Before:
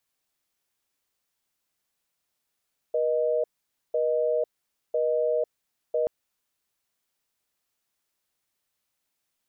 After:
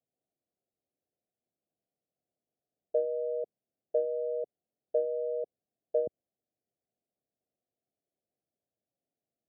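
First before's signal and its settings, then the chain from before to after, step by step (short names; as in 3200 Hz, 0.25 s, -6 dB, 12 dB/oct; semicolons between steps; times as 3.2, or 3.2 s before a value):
call progress tone busy tone, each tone -24.5 dBFS 3.13 s
steep low-pass 760 Hz 96 dB/oct; treble ducked by the level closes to 350 Hz, closed at -21.5 dBFS; HPF 100 Hz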